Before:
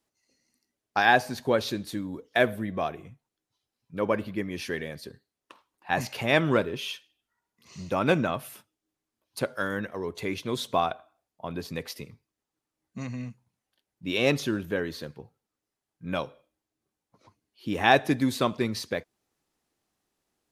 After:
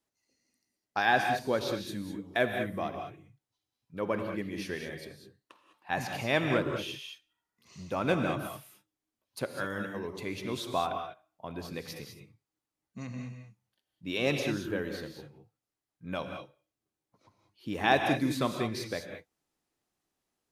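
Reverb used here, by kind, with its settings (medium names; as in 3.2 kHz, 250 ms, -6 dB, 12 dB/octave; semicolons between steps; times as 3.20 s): gated-style reverb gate 230 ms rising, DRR 4.5 dB; trim -5.5 dB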